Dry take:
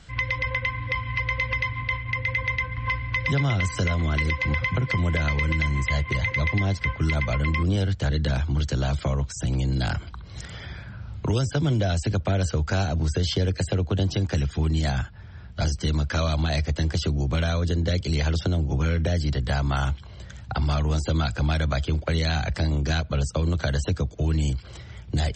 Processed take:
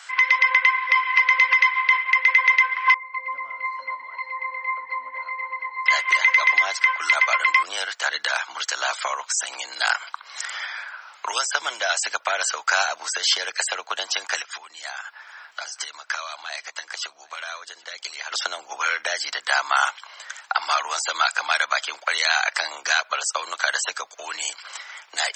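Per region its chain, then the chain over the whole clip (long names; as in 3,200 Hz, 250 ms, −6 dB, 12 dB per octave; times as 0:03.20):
0:02.94–0:05.86: low-pass filter 4,100 Hz + resonances in every octave C, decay 0.2 s + echo with shifted repeats 243 ms, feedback 59%, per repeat −54 Hz, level −15 dB
0:14.42–0:18.32: downward compressor 8 to 1, threshold −32 dBFS + single-tap delay 777 ms −23 dB
whole clip: high-pass filter 940 Hz 24 dB per octave; parametric band 3,600 Hz −6 dB 1 octave; boost into a limiter +19.5 dB; level −5.5 dB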